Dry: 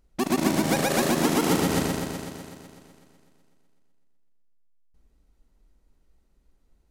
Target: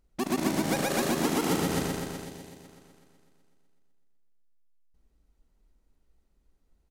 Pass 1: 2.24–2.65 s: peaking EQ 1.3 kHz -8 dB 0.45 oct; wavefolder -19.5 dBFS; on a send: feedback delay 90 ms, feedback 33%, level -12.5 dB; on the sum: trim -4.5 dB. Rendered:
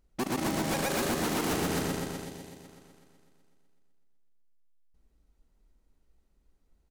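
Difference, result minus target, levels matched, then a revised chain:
wavefolder: distortion +31 dB
2.24–2.65 s: peaking EQ 1.3 kHz -8 dB 0.45 oct; wavefolder -10.5 dBFS; on a send: feedback delay 90 ms, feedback 33%, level -12.5 dB; on the sum: trim -4.5 dB

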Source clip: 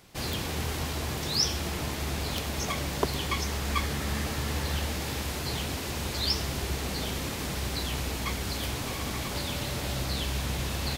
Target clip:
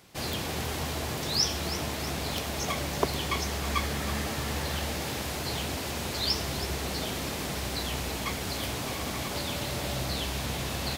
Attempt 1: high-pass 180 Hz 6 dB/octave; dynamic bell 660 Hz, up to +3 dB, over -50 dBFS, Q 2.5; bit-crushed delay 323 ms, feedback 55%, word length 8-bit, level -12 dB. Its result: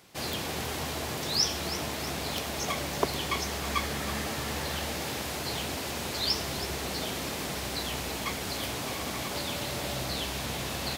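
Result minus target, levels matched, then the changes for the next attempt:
125 Hz band -3.5 dB
change: high-pass 80 Hz 6 dB/octave

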